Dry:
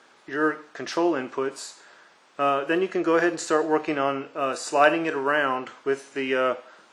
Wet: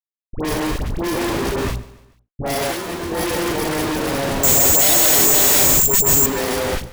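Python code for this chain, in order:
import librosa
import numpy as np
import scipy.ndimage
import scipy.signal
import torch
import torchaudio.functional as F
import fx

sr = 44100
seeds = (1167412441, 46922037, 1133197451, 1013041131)

p1 = fx.bit_reversed(x, sr, seeds[0], block=32)
p2 = fx.rev_plate(p1, sr, seeds[1], rt60_s=1.1, hf_ratio=0.8, predelay_ms=110, drr_db=0.5)
p3 = fx.schmitt(p2, sr, flips_db=-22.5)
p4 = fx.low_shelf(p3, sr, hz=220.0, db=8.5)
p5 = fx.hum_notches(p4, sr, base_hz=60, count=3)
p6 = fx.fuzz(p5, sr, gain_db=37.0, gate_db=-46.0)
p7 = fx.comb_fb(p6, sr, f0_hz=85.0, decay_s=0.19, harmonics='all', damping=0.0, mix_pct=80, at=(2.7, 3.11))
p8 = fx.resample_bad(p7, sr, factor=6, down='none', up='zero_stuff', at=(4.36, 6.19))
p9 = fx.dispersion(p8, sr, late='highs', ms=73.0, hz=1200.0)
p10 = p9 + fx.echo_feedback(p9, sr, ms=145, feedback_pct=44, wet_db=-19.0, dry=0)
y = p10 * librosa.db_to_amplitude(-7.5)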